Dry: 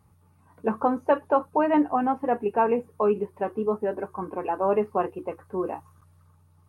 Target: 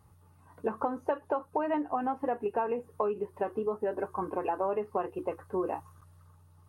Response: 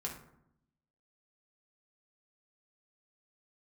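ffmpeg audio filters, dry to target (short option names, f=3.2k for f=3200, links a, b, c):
-af "acompressor=threshold=-27dB:ratio=12,equalizer=f=200:t=o:w=0.72:g=-5.5,bandreject=f=2.3k:w=11,volume=1dB"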